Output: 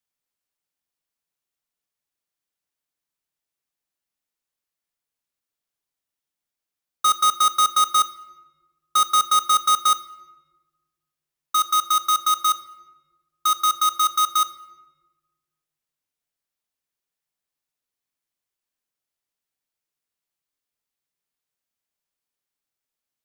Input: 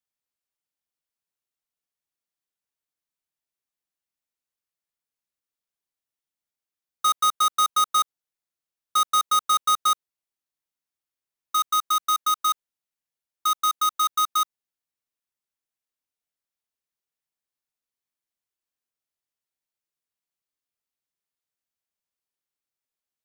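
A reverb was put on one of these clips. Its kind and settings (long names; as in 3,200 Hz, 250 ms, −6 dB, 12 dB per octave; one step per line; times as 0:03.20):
rectangular room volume 820 cubic metres, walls mixed, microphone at 0.35 metres
level +3 dB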